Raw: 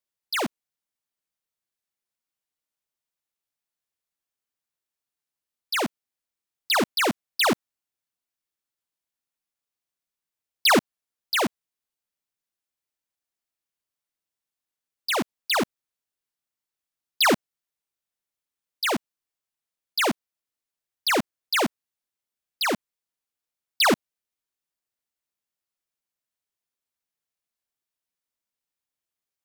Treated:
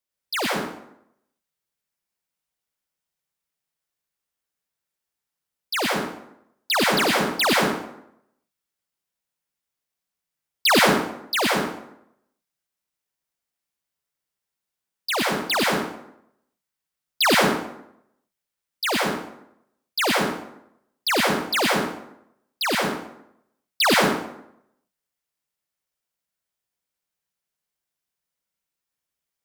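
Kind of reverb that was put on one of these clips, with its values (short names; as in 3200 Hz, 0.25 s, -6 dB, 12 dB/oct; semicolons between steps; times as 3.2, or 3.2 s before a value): plate-style reverb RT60 0.76 s, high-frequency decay 0.7×, pre-delay 85 ms, DRR -2 dB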